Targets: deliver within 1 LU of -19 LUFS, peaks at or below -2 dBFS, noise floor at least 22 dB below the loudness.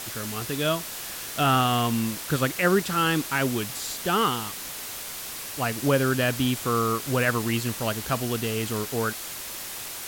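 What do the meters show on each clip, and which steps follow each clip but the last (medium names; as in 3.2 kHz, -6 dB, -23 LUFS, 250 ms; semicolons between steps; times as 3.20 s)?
noise floor -36 dBFS; noise floor target -48 dBFS; loudness -26.0 LUFS; peak level -10.0 dBFS; loudness target -19.0 LUFS
-> noise print and reduce 12 dB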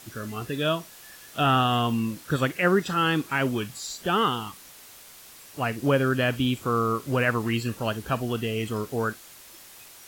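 noise floor -48 dBFS; loudness -26.0 LUFS; peak level -11.0 dBFS; loudness target -19.0 LUFS
-> trim +7 dB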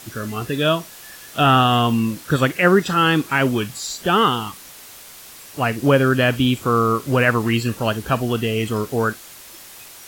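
loudness -19.0 LUFS; peak level -4.0 dBFS; noise floor -41 dBFS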